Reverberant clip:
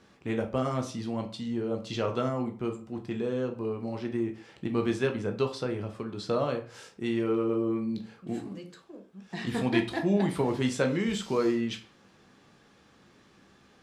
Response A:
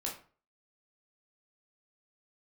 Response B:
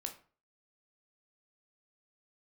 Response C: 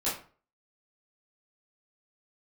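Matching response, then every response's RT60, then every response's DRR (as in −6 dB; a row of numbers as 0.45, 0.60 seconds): B; 0.40, 0.40, 0.40 seconds; −2.5, 4.5, −10.5 decibels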